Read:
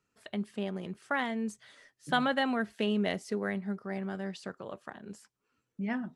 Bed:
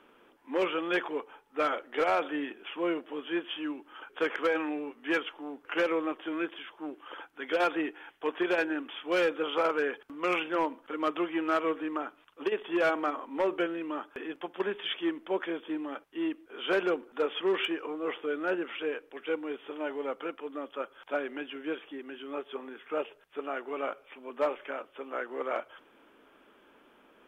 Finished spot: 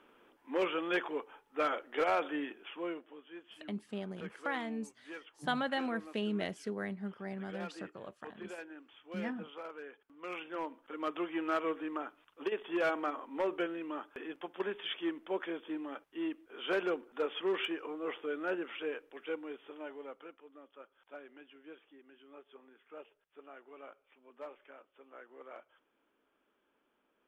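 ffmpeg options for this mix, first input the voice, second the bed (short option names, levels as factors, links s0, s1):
-filter_complex "[0:a]adelay=3350,volume=0.531[s0];[1:a]volume=2.99,afade=t=out:st=2.4:d=0.85:silence=0.188365,afade=t=in:st=10.04:d=1.35:silence=0.223872,afade=t=out:st=19.01:d=1.44:silence=0.237137[s1];[s0][s1]amix=inputs=2:normalize=0"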